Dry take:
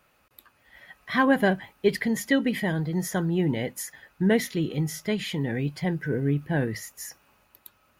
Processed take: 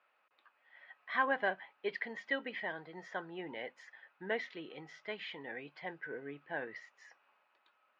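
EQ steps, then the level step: BPF 690–3300 Hz; air absorption 170 m; -5.5 dB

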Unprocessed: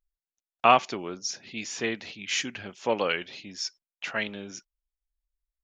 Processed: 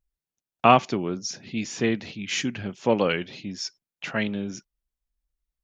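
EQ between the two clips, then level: bell 140 Hz +13 dB 2.8 oct; 0.0 dB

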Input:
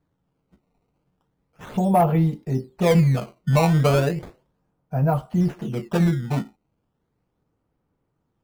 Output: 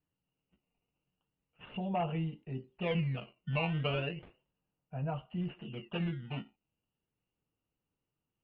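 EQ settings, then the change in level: ladder low-pass 2900 Hz, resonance 90%; air absorption 190 m; -2.5 dB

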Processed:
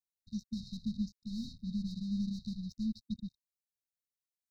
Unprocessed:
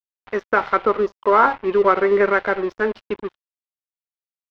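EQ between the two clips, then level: brick-wall FIR band-stop 240–3700 Hz; -1.5 dB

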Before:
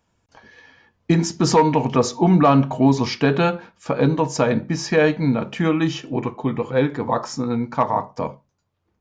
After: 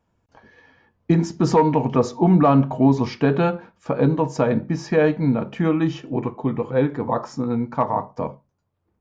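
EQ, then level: high shelf 2100 Hz -11.5 dB; 0.0 dB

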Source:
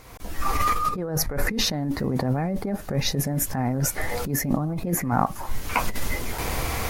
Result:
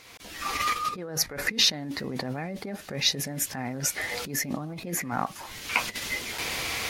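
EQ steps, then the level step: weighting filter D; -6.5 dB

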